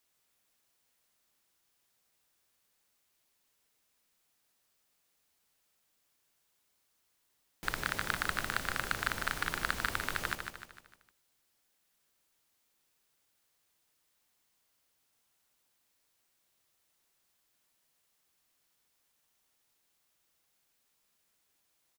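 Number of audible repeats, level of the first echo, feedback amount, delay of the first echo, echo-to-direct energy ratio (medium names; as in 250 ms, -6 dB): 5, -6.5 dB, 46%, 152 ms, -5.5 dB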